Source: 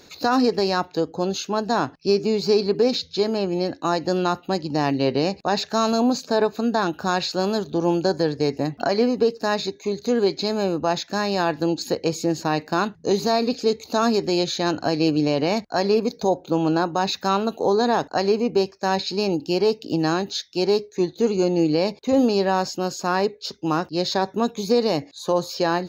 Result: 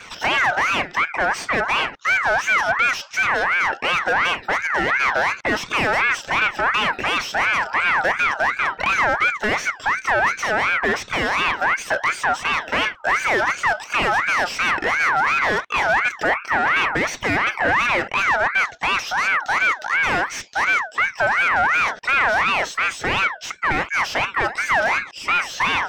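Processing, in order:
mid-hump overdrive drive 27 dB, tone 1,100 Hz, clips at −8 dBFS
pitch vibrato 0.78 Hz 15 cents
ring modulator whose carrier an LFO sweeps 1,500 Hz, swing 30%, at 2.8 Hz

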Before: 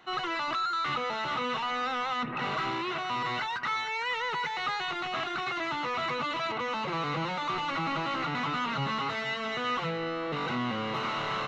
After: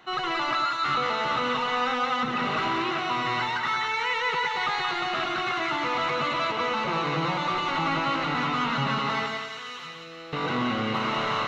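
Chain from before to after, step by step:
0:09.26–0:10.33: first-order pre-emphasis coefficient 0.9
on a send: echo with a time of its own for lows and highs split 980 Hz, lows 109 ms, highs 177 ms, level −4 dB
on the sum: level +3 dB

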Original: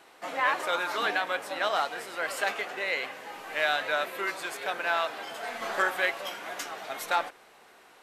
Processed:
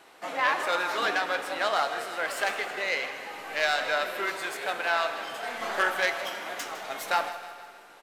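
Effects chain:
phase distortion by the signal itself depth 0.063 ms
on a send: repeating echo 157 ms, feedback 54%, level −14 dB
on the sum: four-comb reverb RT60 1.8 s, combs from 25 ms, DRR 10 dB
level +1 dB

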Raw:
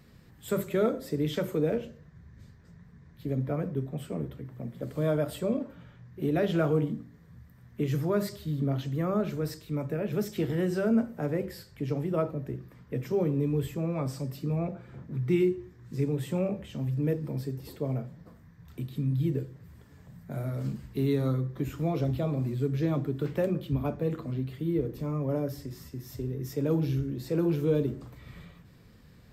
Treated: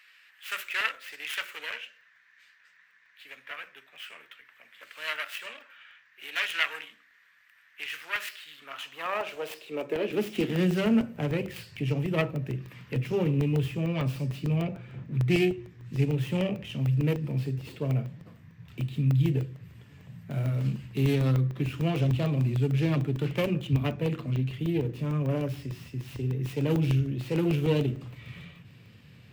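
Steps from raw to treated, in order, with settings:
stylus tracing distortion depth 0.42 ms
parametric band 2,700 Hz +14.5 dB 0.78 octaves
high-pass filter sweep 1,600 Hz → 110 Hz, 0:08.52–0:11.10
regular buffer underruns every 0.15 s, samples 64, zero, from 0:00.66
0:11.56–0:12.97: one half of a high-frequency compander encoder only
level −1.5 dB

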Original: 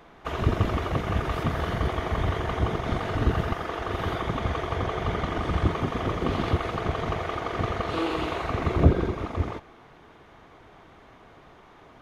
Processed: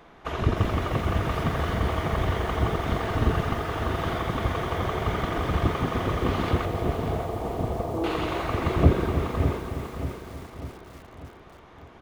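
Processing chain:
0:06.65–0:08.04: Butterworth low-pass 940 Hz 36 dB per octave
repeating echo 594 ms, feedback 51%, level −9.5 dB
feedback echo at a low word length 312 ms, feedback 55%, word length 7 bits, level −9.5 dB

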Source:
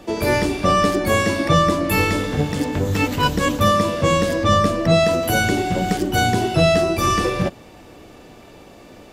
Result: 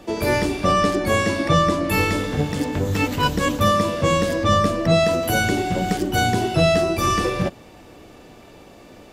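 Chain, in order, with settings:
0:00.72–0:01.94: Bessel low-pass filter 11,000 Hz, order 2
level −1.5 dB

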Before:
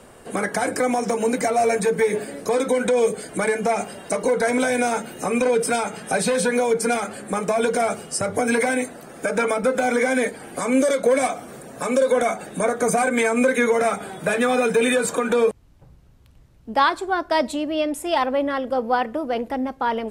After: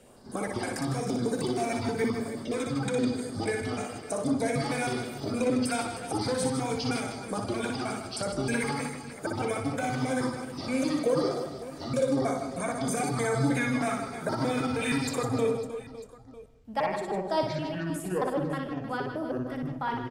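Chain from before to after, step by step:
pitch shifter gated in a rhythm −10.5 semitones, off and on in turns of 157 ms
auto-filter notch sine 1 Hz 370–2,700 Hz
reverse bouncing-ball delay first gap 60 ms, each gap 1.6×, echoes 5
on a send at −14 dB: convolution reverb RT60 0.70 s, pre-delay 80 ms
on the sum: level −8.5 dB

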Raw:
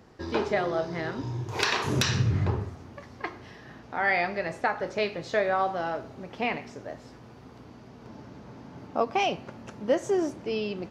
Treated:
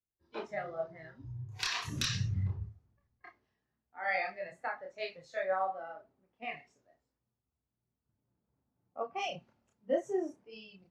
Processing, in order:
noise reduction from a noise print of the clip's start 12 dB
multi-voice chorus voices 6, 0.97 Hz, delay 29 ms, depth 3 ms
multiband upward and downward expander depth 70%
level −8 dB

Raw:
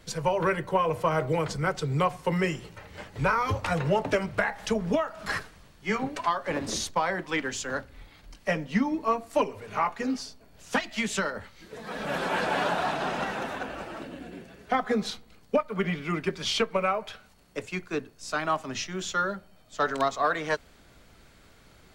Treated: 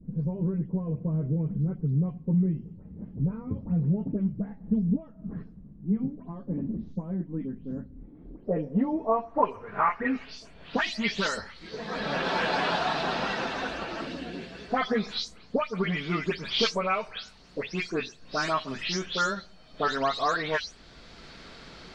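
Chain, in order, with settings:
every frequency bin delayed by itself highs late, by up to 207 ms
low-pass filter sweep 210 Hz → 4,700 Hz, 0:07.81–0:10.94
multiband upward and downward compressor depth 40%

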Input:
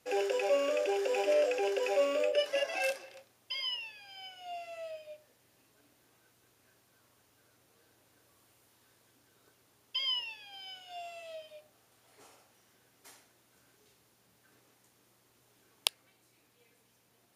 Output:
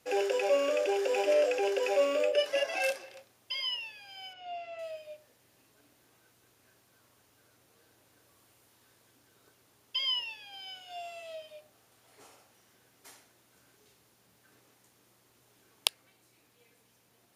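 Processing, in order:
0:04.33–0:04.79: low-pass filter 3,600 Hz 12 dB per octave
level +2 dB

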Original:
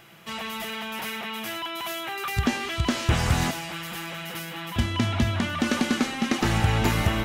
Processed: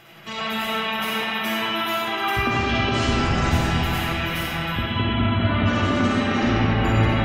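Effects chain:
gate on every frequency bin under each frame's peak −25 dB strong
downward compressor, threshold −25 dBFS, peak gain reduction 9 dB
convolution reverb RT60 3.9 s, pre-delay 10 ms, DRR −7 dB
level +1.5 dB

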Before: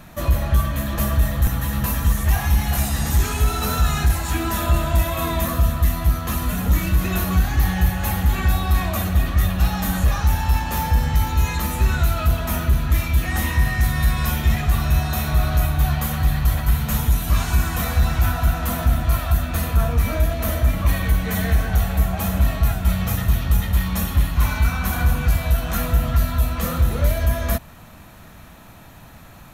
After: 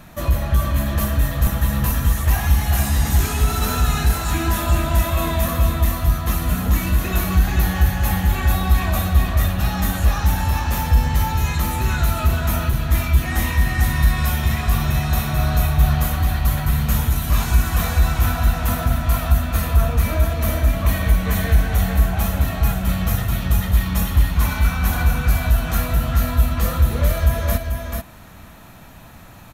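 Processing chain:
single-tap delay 436 ms −5 dB

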